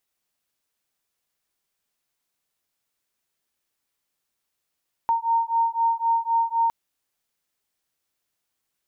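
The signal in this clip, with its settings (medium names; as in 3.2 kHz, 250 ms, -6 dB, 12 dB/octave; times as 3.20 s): beating tones 918 Hz, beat 3.9 Hz, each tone -22.5 dBFS 1.61 s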